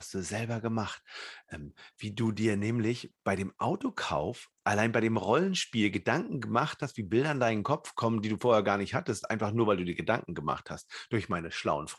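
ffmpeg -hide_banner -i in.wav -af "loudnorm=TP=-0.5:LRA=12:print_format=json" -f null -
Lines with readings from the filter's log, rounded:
"input_i" : "-31.0",
"input_tp" : "-10.8",
"input_lra" : "3.8",
"input_thresh" : "-41.4",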